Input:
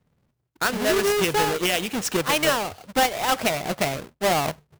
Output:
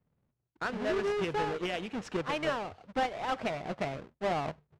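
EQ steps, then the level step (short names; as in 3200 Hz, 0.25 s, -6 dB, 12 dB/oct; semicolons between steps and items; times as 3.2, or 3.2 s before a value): air absorption 78 m; high shelf 3600 Hz -11.5 dB; -8.5 dB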